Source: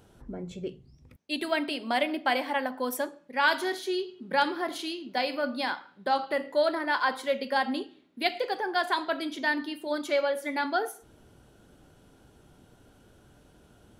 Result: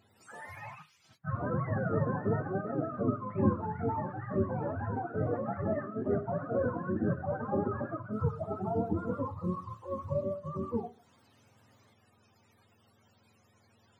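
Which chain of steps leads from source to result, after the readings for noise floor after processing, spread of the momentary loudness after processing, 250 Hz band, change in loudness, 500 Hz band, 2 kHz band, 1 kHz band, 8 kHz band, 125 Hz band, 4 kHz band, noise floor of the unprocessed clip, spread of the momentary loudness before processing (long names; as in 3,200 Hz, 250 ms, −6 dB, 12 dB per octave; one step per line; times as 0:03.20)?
−67 dBFS, 9 LU, 0.0 dB, −4.5 dB, −3.5 dB, −16.0 dB, −8.5 dB, below −20 dB, can't be measured, below −30 dB, −59 dBFS, 9 LU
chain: frequency axis turned over on the octave scale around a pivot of 570 Hz
delay with pitch and tempo change per echo 167 ms, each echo +3 semitones, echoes 2
level −5.5 dB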